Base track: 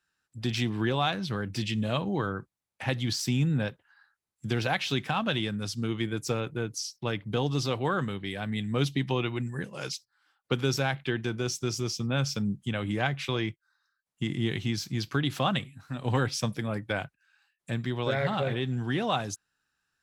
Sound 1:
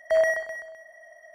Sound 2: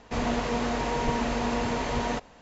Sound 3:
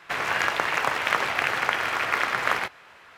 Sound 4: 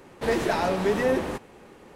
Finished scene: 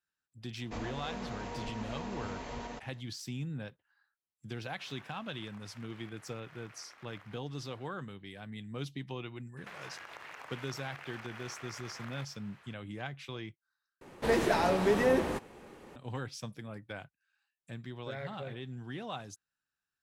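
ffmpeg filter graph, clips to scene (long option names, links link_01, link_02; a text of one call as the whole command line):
ffmpeg -i bed.wav -i cue0.wav -i cue1.wav -i cue2.wav -i cue3.wav -filter_complex "[3:a]asplit=2[link_01][link_02];[0:a]volume=-12.5dB[link_03];[2:a]alimiter=limit=-21.5dB:level=0:latency=1:release=378[link_04];[link_01]acompressor=threshold=-43dB:ratio=3:attack=0.28:release=266:knee=1:detection=peak[link_05];[link_02]acompressor=threshold=-34dB:ratio=6:attack=3.2:release=140:knee=1:detection=peak[link_06];[link_03]asplit=2[link_07][link_08];[link_07]atrim=end=14.014[link_09];[4:a]atrim=end=1.95,asetpts=PTS-STARTPTS,volume=-3dB[link_10];[link_08]atrim=start=15.956[link_11];[link_04]atrim=end=2.41,asetpts=PTS-STARTPTS,volume=-9.5dB,afade=type=in:duration=0.004:curve=hsin,afade=type=out:start_time=2.406:duration=0.004:curve=hsin,adelay=600[link_12];[link_05]atrim=end=3.17,asetpts=PTS-STARTPTS,volume=-13dB,afade=type=in:duration=0.004:curve=hsin,afade=type=out:start_time=3.166:duration=0.004:curve=hsin,adelay=4700[link_13];[link_06]atrim=end=3.17,asetpts=PTS-STARTPTS,volume=-10.5dB,afade=type=in:duration=0.004:curve=hsin,afade=type=out:start_time=3.166:duration=0.004:curve=hsin,adelay=9570[link_14];[link_09][link_10]acrossfade=duration=0.004:curve1=hsin:curve2=hsin[link_15];[link_15][link_11]acrossfade=duration=0.004:curve1=hsin:curve2=hsin[link_16];[link_16][link_12][link_13][link_14]amix=inputs=4:normalize=0" out.wav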